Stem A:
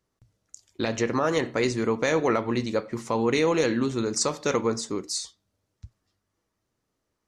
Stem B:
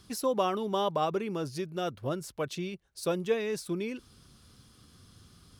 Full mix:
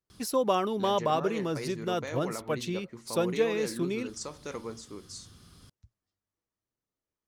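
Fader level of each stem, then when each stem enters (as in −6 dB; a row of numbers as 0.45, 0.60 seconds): −14.0, +2.0 decibels; 0.00, 0.10 seconds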